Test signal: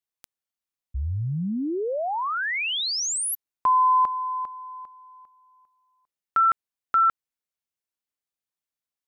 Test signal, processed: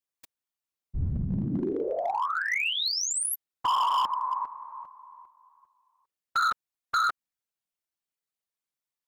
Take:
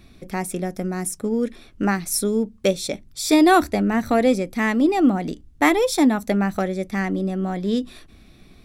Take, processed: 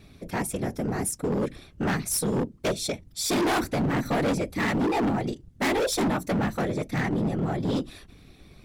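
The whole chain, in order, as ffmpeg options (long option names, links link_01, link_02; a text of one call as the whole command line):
ffmpeg -i in.wav -af "afftfilt=real='hypot(re,im)*cos(2*PI*random(0))':imag='hypot(re,im)*sin(2*PI*random(1))':win_size=512:overlap=0.75,volume=26.5dB,asoftclip=hard,volume=-26.5dB,volume=4.5dB" out.wav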